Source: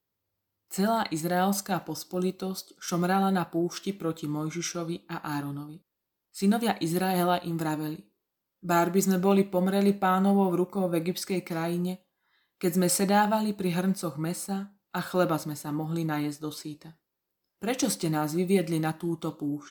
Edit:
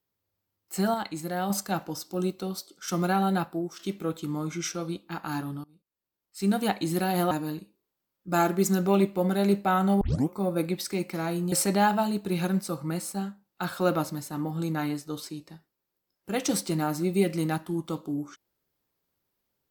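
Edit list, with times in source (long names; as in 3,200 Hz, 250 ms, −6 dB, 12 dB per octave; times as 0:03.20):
0:00.94–0:01.50: clip gain −4.5 dB
0:03.43–0:03.79: fade out, to −9.5 dB
0:05.64–0:06.62: fade in, from −21.5 dB
0:07.31–0:07.68: remove
0:10.38: tape start 0.28 s
0:11.89–0:12.86: remove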